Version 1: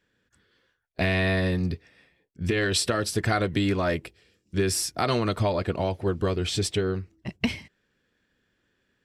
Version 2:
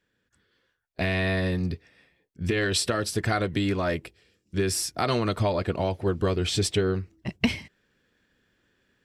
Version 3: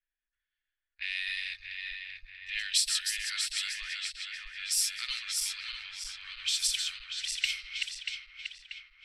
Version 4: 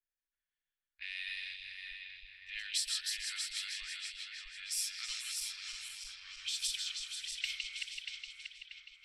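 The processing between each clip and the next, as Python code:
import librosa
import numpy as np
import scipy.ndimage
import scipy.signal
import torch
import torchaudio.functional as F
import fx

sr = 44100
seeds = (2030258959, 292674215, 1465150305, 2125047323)

y1 = fx.rider(x, sr, range_db=3, speed_s=2.0)
y2 = fx.reverse_delay_fb(y1, sr, ms=318, feedback_pct=77, wet_db=-4)
y2 = scipy.signal.sosfilt(scipy.signal.cheby2(4, 70, [120.0, 610.0], 'bandstop', fs=sr, output='sos'), y2)
y2 = fx.env_lowpass(y2, sr, base_hz=1100.0, full_db=-28.0)
y3 = fx.echo_stepped(y2, sr, ms=161, hz=3200.0, octaves=0.7, feedback_pct=70, wet_db=-3.0)
y3 = y3 * 10.0 ** (-8.0 / 20.0)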